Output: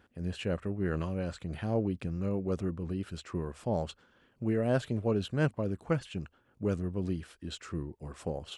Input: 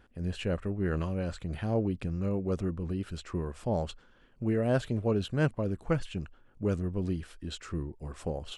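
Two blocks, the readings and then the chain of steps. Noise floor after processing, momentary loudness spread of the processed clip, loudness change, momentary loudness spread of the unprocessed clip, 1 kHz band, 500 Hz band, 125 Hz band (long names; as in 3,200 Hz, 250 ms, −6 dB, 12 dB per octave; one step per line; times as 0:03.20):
−69 dBFS, 11 LU, −1.5 dB, 9 LU, −1.0 dB, −1.0 dB, −2.0 dB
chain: high-pass filter 79 Hz
level −1 dB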